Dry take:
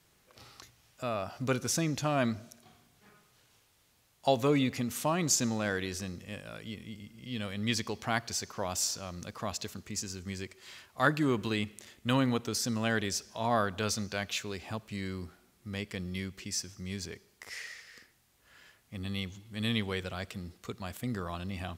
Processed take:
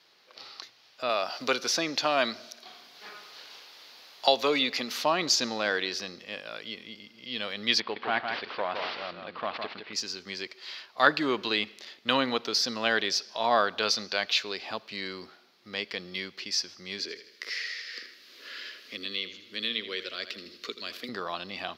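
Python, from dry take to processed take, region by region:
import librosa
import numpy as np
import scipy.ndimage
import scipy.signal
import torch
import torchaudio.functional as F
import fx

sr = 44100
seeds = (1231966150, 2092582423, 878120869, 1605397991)

y = fx.chain(x, sr, fx.highpass(hz=210.0, slope=6),
    fx.high_shelf(hz=4400.0, db=6.0),
    fx.band_squash(depth_pct=40), at=(1.09, 5.02))
y = fx.chain(y, sr, fx.cvsd(bps=32000),
    fx.lowpass(hz=3100.0, slope=24),
    fx.echo_single(ms=160, db=-5.5), at=(7.8, 9.93))
y = fx.chain(y, sr, fx.fixed_phaser(hz=340.0, stages=4),
    fx.echo_feedback(ms=79, feedback_pct=39, wet_db=-12.5),
    fx.band_squash(depth_pct=70), at=(16.99, 21.09))
y = scipy.signal.sosfilt(scipy.signal.butter(2, 400.0, 'highpass', fs=sr, output='sos'), y)
y = fx.high_shelf_res(y, sr, hz=6200.0, db=-11.5, q=3.0)
y = y * 10.0 ** (5.5 / 20.0)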